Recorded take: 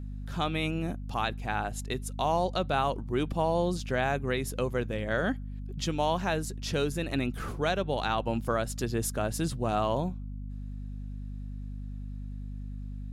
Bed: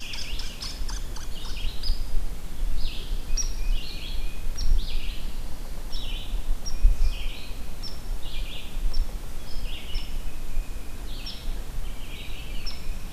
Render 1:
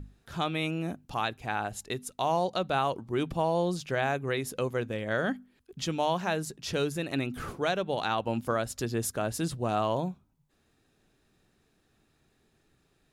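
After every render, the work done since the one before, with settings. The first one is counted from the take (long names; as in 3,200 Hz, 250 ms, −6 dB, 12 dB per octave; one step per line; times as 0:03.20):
mains-hum notches 50/100/150/200/250 Hz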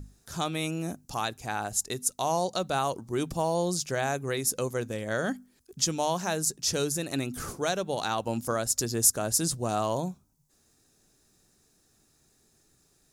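high shelf with overshoot 4,300 Hz +11.5 dB, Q 1.5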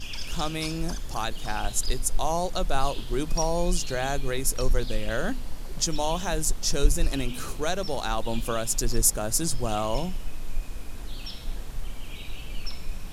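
mix in bed −2 dB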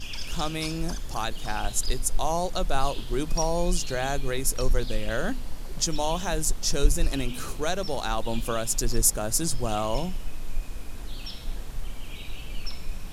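no processing that can be heard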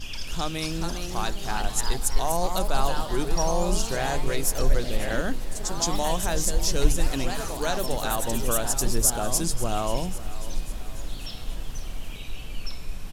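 repeating echo 541 ms, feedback 55%, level −16 dB
delay with pitch and tempo change per echo 467 ms, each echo +2 semitones, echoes 3, each echo −6 dB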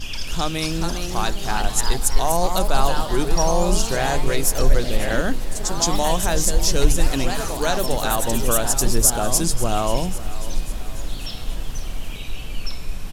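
level +5.5 dB
brickwall limiter −3 dBFS, peak gain reduction 3 dB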